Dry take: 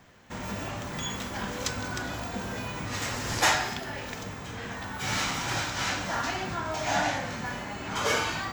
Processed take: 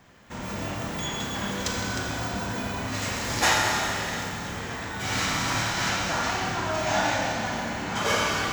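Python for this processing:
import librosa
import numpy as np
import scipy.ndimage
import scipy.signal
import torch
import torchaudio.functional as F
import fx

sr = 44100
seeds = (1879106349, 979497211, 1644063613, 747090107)

y = fx.rev_schroeder(x, sr, rt60_s=3.1, comb_ms=27, drr_db=-1.0)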